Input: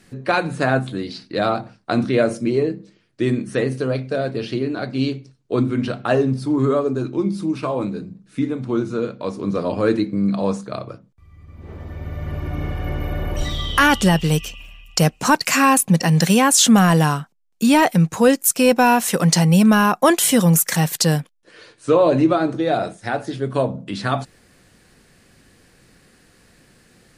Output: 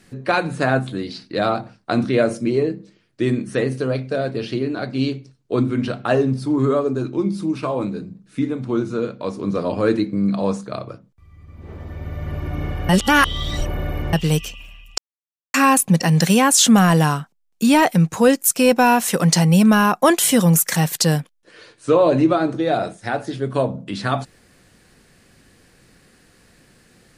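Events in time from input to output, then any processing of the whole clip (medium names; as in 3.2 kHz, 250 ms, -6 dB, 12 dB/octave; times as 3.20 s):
12.89–14.13 s: reverse
14.98–15.54 s: mute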